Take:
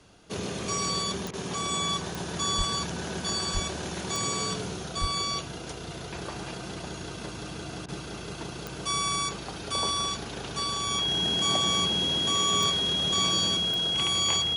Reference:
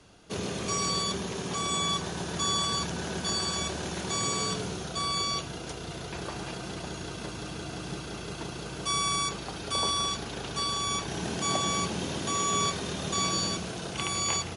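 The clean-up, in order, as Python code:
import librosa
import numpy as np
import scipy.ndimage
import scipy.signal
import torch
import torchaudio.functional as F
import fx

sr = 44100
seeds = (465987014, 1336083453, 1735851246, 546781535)

y = fx.fix_declick_ar(x, sr, threshold=10.0)
y = fx.notch(y, sr, hz=3300.0, q=30.0)
y = fx.highpass(y, sr, hz=140.0, slope=24, at=(2.57, 2.69), fade=0.02)
y = fx.highpass(y, sr, hz=140.0, slope=24, at=(3.53, 3.65), fade=0.02)
y = fx.highpass(y, sr, hz=140.0, slope=24, at=(5.0, 5.12), fade=0.02)
y = fx.fix_interpolate(y, sr, at_s=(1.31, 7.86), length_ms=23.0)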